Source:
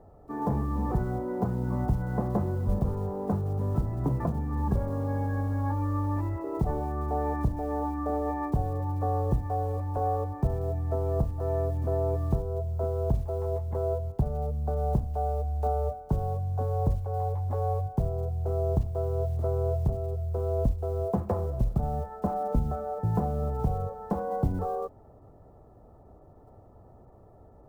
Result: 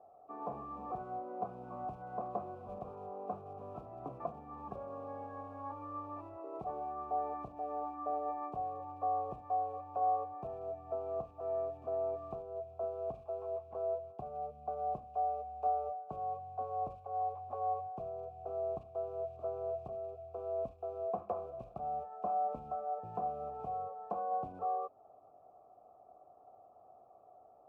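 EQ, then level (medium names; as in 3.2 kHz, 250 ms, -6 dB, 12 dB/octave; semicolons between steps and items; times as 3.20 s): dynamic bell 750 Hz, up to -5 dB, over -46 dBFS, Q 2.5; vowel filter a; +4.5 dB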